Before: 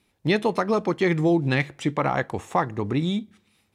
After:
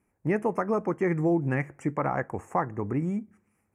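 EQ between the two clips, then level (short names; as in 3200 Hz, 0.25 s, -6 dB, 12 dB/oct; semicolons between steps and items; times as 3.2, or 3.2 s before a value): Butterworth band-stop 3800 Hz, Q 0.74; high shelf 7900 Hz -5.5 dB; -4.0 dB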